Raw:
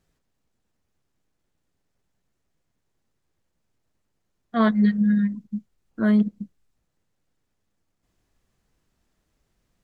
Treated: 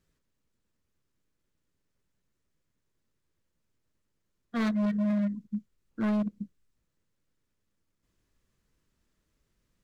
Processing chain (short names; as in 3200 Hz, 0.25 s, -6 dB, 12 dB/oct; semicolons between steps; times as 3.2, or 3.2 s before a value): bell 750 Hz -9.5 dB 0.35 oct; overloaded stage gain 21.5 dB; gain -3.5 dB